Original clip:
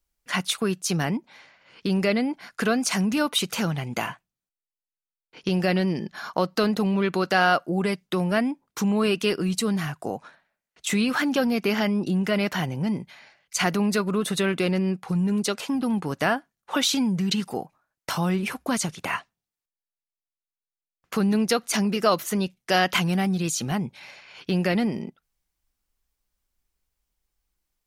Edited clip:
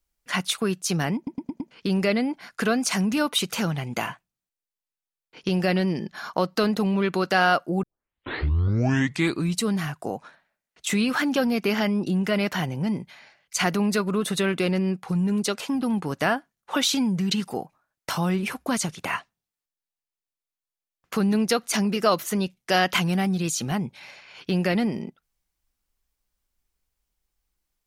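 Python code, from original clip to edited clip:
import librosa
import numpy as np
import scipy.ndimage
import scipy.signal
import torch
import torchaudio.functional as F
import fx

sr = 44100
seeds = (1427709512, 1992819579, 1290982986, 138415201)

y = fx.edit(x, sr, fx.stutter_over(start_s=1.16, slice_s=0.11, count=5),
    fx.tape_start(start_s=7.83, length_s=1.77), tone=tone)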